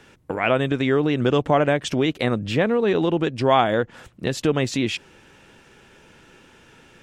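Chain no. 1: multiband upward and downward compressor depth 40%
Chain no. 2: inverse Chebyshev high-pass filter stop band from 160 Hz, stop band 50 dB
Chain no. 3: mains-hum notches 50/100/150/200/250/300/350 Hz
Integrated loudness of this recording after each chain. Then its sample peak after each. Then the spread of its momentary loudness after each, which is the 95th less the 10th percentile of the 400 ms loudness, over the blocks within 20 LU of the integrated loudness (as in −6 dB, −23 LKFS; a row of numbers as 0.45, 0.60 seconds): −21.5, −24.0, −22.0 LKFS; −5.0, −4.5, −5.5 dBFS; 20, 10, 8 LU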